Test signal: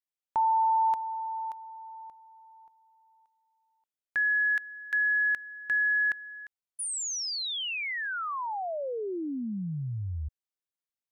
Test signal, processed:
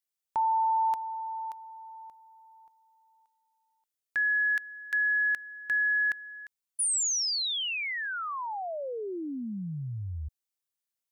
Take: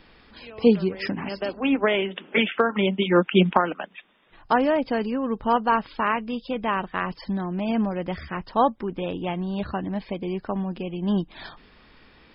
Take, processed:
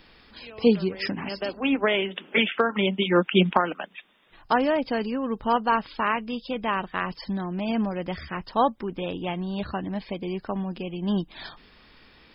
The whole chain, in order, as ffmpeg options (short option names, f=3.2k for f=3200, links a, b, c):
-af "highshelf=f=3.8k:g=9,volume=-2dB"